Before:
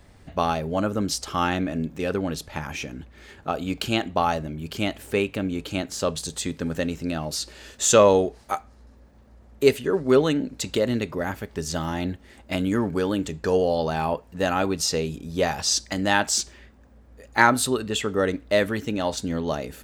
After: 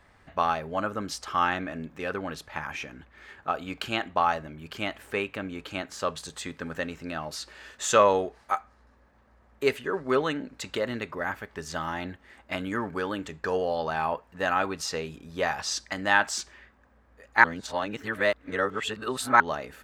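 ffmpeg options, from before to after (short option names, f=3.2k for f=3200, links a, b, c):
-filter_complex "[0:a]asplit=3[a][b][c];[a]atrim=end=17.442[d];[b]atrim=start=17.438:end=19.402,asetpts=PTS-STARTPTS,areverse[e];[c]atrim=start=19.398[f];[d][e]acrossfade=d=0.004:c1=hsin:c2=hsin[g];[g][f]acrossfade=d=0.004:c1=hsin:c2=hsin,equalizer=f=1.4k:w=0.61:g=14,bandreject=f=1.4k:w=24,volume=-11dB"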